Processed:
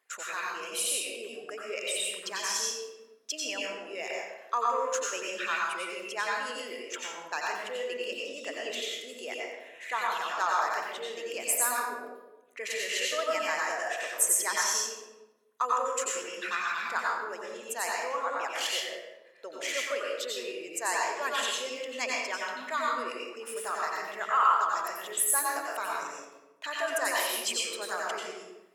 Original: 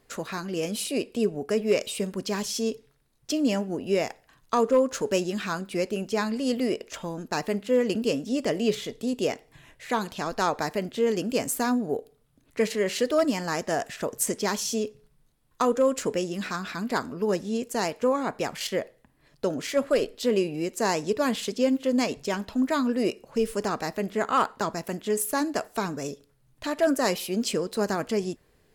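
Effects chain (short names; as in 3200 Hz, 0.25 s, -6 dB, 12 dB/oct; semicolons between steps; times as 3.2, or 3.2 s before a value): formant sharpening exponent 1.5; HPF 1400 Hz 12 dB/oct; bell 4500 Hz -8.5 dB 0.5 oct; reverb RT60 1.0 s, pre-delay 84 ms, DRR -3.5 dB; gain +2 dB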